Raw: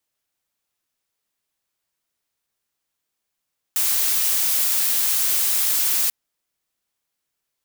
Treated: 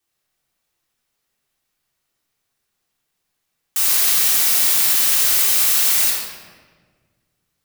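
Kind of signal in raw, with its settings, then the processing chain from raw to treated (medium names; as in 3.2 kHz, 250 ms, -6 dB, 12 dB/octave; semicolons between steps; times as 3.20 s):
noise blue, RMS -20 dBFS 2.34 s
simulated room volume 1600 m³, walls mixed, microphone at 3.6 m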